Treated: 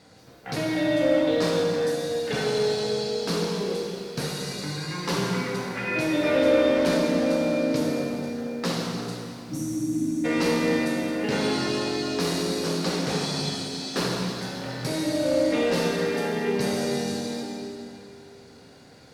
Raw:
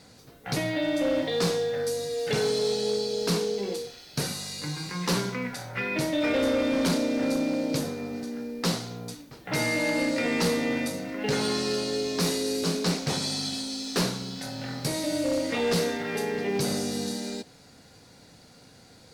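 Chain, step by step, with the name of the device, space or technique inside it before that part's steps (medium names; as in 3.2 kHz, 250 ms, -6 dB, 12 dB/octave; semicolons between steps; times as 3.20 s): spectral replace 9.28–10.22 s, 340–5400 Hz before; bass shelf 130 Hz -6 dB; swimming-pool hall (reverberation RT60 2.8 s, pre-delay 7 ms, DRR -2 dB; treble shelf 4.2 kHz -7.5 dB)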